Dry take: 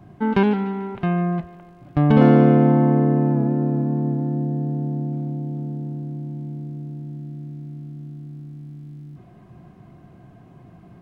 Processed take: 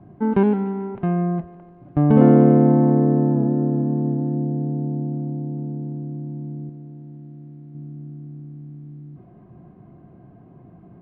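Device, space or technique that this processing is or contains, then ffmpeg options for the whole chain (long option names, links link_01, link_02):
phone in a pocket: -filter_complex "[0:a]lowpass=3300,equalizer=frequency=340:width_type=o:width=2.5:gain=5,highshelf=frequency=2100:gain=-12,asettb=1/sr,asplit=3[link_01][link_02][link_03];[link_01]atrim=end=6.694[link_04];[link_02]atrim=start=6.69:end=7.75,asetpts=PTS-STARTPTS,afade=type=in:duration=0.004:curve=qsin,afade=type=out:start_time=1.056:duration=0.004:curve=qsin,lowshelf=frequency=500:gain=-6.5[link_05];[link_03]atrim=start=7.746[link_06];[link_04][link_05]acrossfade=duration=0.004:curve1=hsin:curve2=qsin[link_07];[link_07][link_06]acrossfade=duration=0.004:curve1=qsin:curve2=hsin,volume=-3dB"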